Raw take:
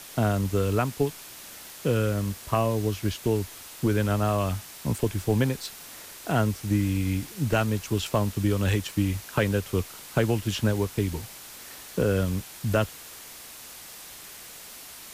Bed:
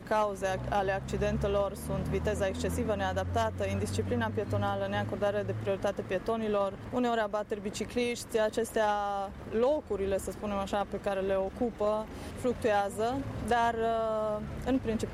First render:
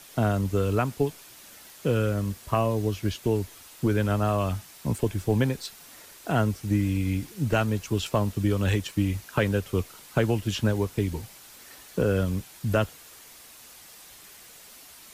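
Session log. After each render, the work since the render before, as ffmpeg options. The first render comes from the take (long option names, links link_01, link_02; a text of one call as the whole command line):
ffmpeg -i in.wav -af "afftdn=noise_reduction=6:noise_floor=-44" out.wav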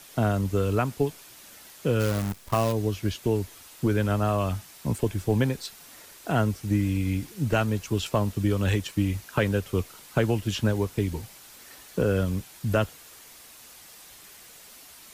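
ffmpeg -i in.wav -filter_complex "[0:a]asplit=3[link_01][link_02][link_03];[link_01]afade=type=out:start_time=1.99:duration=0.02[link_04];[link_02]acrusher=bits=6:dc=4:mix=0:aa=0.000001,afade=type=in:start_time=1.99:duration=0.02,afade=type=out:start_time=2.71:duration=0.02[link_05];[link_03]afade=type=in:start_time=2.71:duration=0.02[link_06];[link_04][link_05][link_06]amix=inputs=3:normalize=0" out.wav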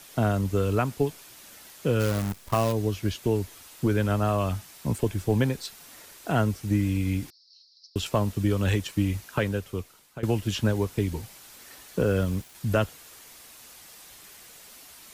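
ffmpeg -i in.wav -filter_complex "[0:a]asettb=1/sr,asplit=3[link_01][link_02][link_03];[link_01]atrim=end=7.304[link_04];[link_02]atrim=start=7.3:end=7.96,asetpts=PTS-STARTPTS,afade=type=in:duration=0.004:curve=qsin,afade=type=out:start_time=0.656:duration=0.004:curve=qsin,asuperpass=centerf=4700:order=8:qfactor=3.5[link_05];[link_03]atrim=start=7.956[link_06];[link_04][link_05]acrossfade=duration=0.004:curve1=hsin:curve2=qsin[link_07];[link_07][link_06]acrossfade=duration=0.004:curve1=qsin:curve2=hsin,asettb=1/sr,asplit=3[link_08][link_09][link_10];[link_08]atrim=end=12.014[link_11];[link_09]atrim=start=12.01:end=12.55,asetpts=PTS-STARTPTS,afade=type=in:duration=0.004:curve=qsin,afade=type=out:start_time=0.536:duration=0.004:curve=qsin,aeval=exprs='val(0)*gte(abs(val(0)),0.00531)':channel_layout=same[link_12];[link_10]atrim=start=12.546[link_13];[link_11][link_12]acrossfade=duration=0.004:curve1=hsin:curve2=qsin[link_14];[link_14][link_13]acrossfade=duration=0.004:curve1=qsin:curve2=hsin,asplit=2[link_15][link_16];[link_15]atrim=end=10.23,asetpts=PTS-STARTPTS,afade=type=out:start_time=9.15:duration=1.08:silence=0.133352[link_17];[link_16]atrim=start=10.23,asetpts=PTS-STARTPTS,afade=type=in:duration=0.004:curve=hsin:silence=0.133352[link_18];[link_17][link_18]concat=n=2:v=0:a=1" out.wav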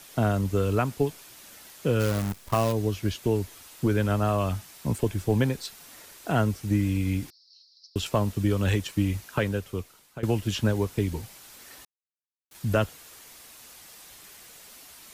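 ffmpeg -i in.wav -filter_complex "[0:a]asplit=3[link_01][link_02][link_03];[link_01]atrim=end=11.85,asetpts=PTS-STARTPTS,afade=type=out:start_time=11.846:duration=0.004:curve=hsin[link_04];[link_02]atrim=start=11.85:end=12.51,asetpts=PTS-STARTPTS,volume=0[link_05];[link_03]atrim=start=12.51,asetpts=PTS-STARTPTS,afade=type=in:duration=0.004:curve=hsin[link_06];[link_04][link_05][link_06]concat=n=3:v=0:a=1" out.wav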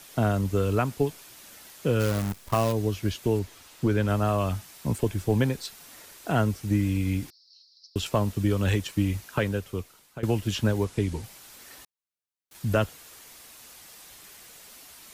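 ffmpeg -i in.wav -filter_complex "[0:a]asettb=1/sr,asplit=3[link_01][link_02][link_03];[link_01]atrim=end=3.394[link_04];[link_02]atrim=start=3.39:end=4.08,asetpts=PTS-STARTPTS,afade=type=in:duration=0.004:curve=qsin,afade=type=out:start_time=0.686:duration=0.004:curve=qsin,equalizer=frequency=12000:width_type=o:width=1.1:gain=-6.5[link_05];[link_03]atrim=start=4.076[link_06];[link_04][link_05]acrossfade=duration=0.004:curve1=hsin:curve2=qsin[link_07];[link_07][link_06]acrossfade=duration=0.004:curve1=qsin:curve2=hsin,asettb=1/sr,asplit=3[link_08][link_09][link_10];[link_08]atrim=end=10.844[link_11];[link_09]atrim=start=10.84:end=11.24,asetpts=PTS-STARTPTS,afade=type=in:duration=0.004:curve=qsin,afade=type=out:start_time=0.396:duration=0.004:curve=qsin,lowpass=frequency=11000:width=0.5412,lowpass=frequency=11000:width=1.3066[link_12];[link_10]atrim=start=11.236[link_13];[link_11][link_12]acrossfade=duration=0.004:curve1=hsin:curve2=qsin[link_14];[link_14][link_13]acrossfade=duration=0.004:curve1=qsin:curve2=hsin" out.wav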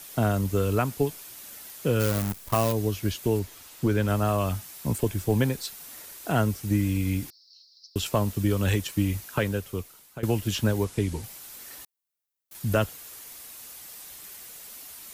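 ffmpeg -i in.wav -af "highshelf=frequency=9800:gain=11" out.wav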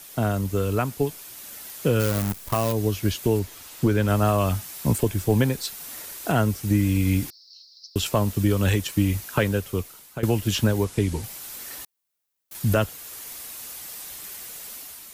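ffmpeg -i in.wav -af "dynaudnorm=framelen=980:gausssize=3:maxgain=6dB,alimiter=limit=-10.5dB:level=0:latency=1:release=486" out.wav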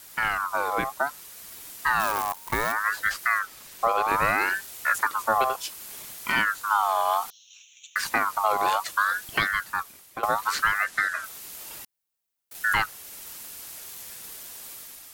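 ffmpeg -i in.wav -af "aeval=exprs='val(0)*sin(2*PI*1300*n/s+1300*0.3/0.64*sin(2*PI*0.64*n/s))':channel_layout=same" out.wav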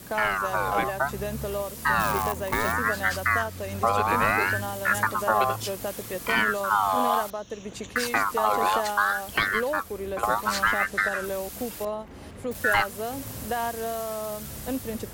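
ffmpeg -i in.wav -i bed.wav -filter_complex "[1:a]volume=-1.5dB[link_01];[0:a][link_01]amix=inputs=2:normalize=0" out.wav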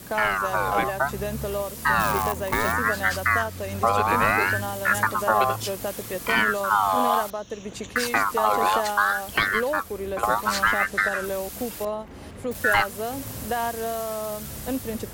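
ffmpeg -i in.wav -af "volume=2dB" out.wav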